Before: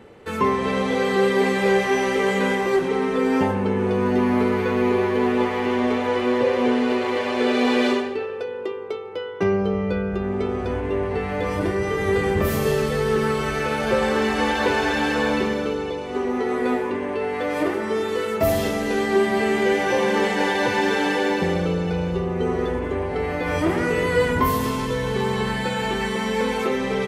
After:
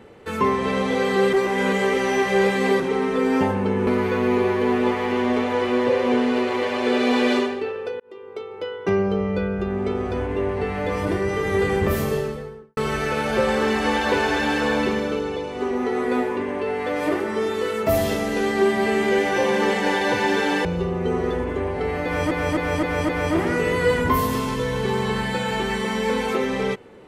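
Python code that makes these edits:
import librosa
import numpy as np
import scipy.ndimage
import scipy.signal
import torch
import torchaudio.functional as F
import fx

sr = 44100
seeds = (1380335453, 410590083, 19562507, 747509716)

y = fx.studio_fade_out(x, sr, start_s=12.39, length_s=0.92)
y = fx.edit(y, sr, fx.reverse_span(start_s=1.33, length_s=1.47),
    fx.cut(start_s=3.87, length_s=0.54),
    fx.fade_in_span(start_s=8.54, length_s=0.59),
    fx.cut(start_s=21.19, length_s=0.81),
    fx.repeat(start_s=23.4, length_s=0.26, count=5), tone=tone)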